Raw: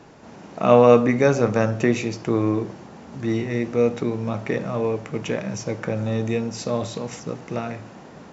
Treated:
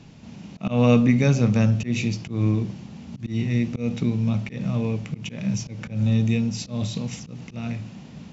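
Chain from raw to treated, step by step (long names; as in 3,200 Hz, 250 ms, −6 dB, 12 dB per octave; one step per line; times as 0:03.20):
low-pass filter 3,100 Hz 6 dB per octave
volume swells 155 ms
flat-topped bell 760 Hz −15 dB 2.9 octaves
level +6.5 dB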